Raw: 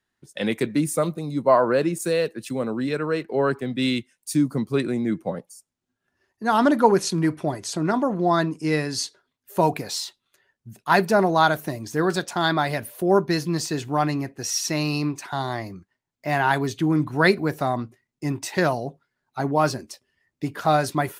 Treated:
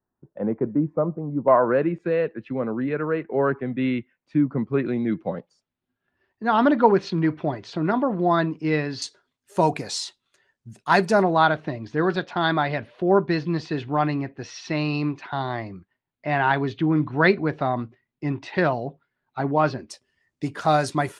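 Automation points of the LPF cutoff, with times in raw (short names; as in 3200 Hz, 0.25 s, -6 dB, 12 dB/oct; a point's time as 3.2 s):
LPF 24 dB/oct
1100 Hz
from 1.48 s 2300 Hz
from 4.86 s 3800 Hz
from 9.02 s 8900 Hz
from 11.22 s 3700 Hz
from 19.9 s 9300 Hz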